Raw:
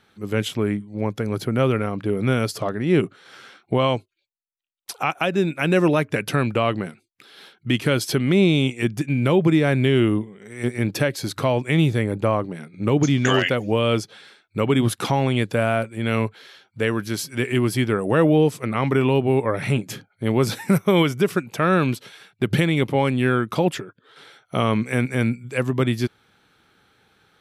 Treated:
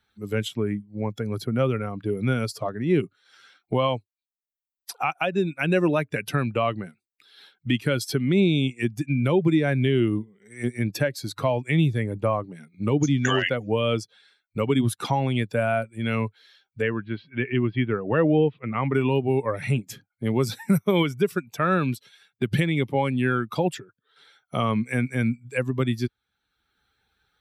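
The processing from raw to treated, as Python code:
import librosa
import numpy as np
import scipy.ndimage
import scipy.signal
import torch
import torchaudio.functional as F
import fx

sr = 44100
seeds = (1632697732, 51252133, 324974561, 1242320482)

y = fx.steep_lowpass(x, sr, hz=3300.0, slope=36, at=(16.82, 18.94))
y = fx.bin_expand(y, sr, power=1.5)
y = fx.band_squash(y, sr, depth_pct=40)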